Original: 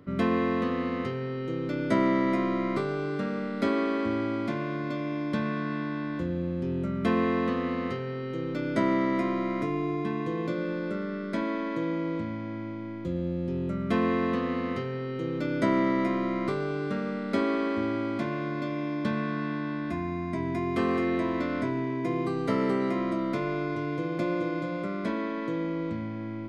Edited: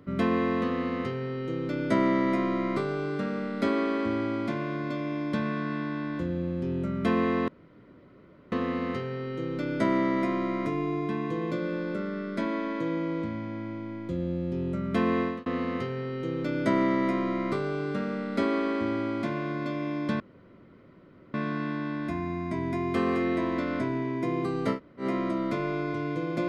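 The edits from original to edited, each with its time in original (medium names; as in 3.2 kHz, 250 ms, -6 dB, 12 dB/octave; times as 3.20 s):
7.48 s: insert room tone 1.04 s
14.17–14.42 s: fade out
19.16 s: insert room tone 1.14 s
22.57–22.84 s: room tone, crossfade 0.10 s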